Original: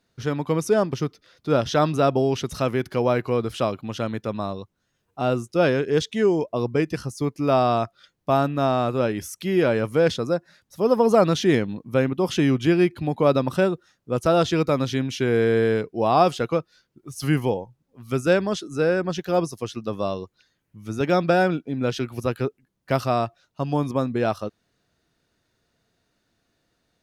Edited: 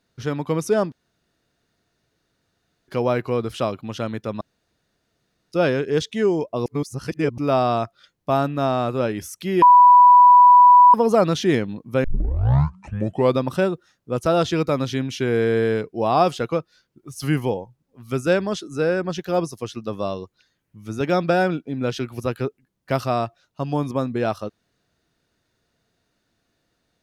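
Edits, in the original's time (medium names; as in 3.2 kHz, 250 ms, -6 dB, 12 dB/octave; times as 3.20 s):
0.92–2.88 s: room tone
4.41–5.52 s: room tone
6.66–7.38 s: reverse
9.62–10.94 s: bleep 985 Hz -6.5 dBFS
12.04 s: tape start 1.38 s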